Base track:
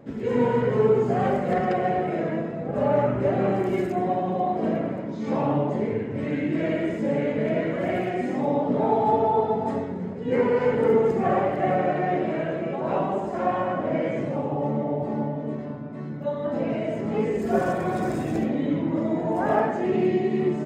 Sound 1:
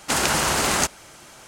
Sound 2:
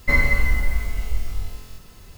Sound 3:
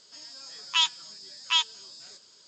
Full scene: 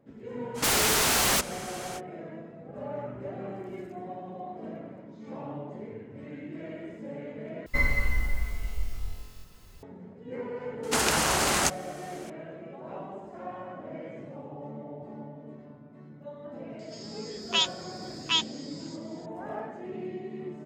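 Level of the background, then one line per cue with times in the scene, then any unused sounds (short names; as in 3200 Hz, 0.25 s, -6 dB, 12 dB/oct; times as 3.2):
base track -15 dB
0.54 add 1 -16.5 dB, fades 0.05 s + sine folder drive 18 dB, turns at -4.5 dBFS
7.66 replace with 2 -7.5 dB
10.83 add 1 -4 dB
16.79 add 3 -2 dB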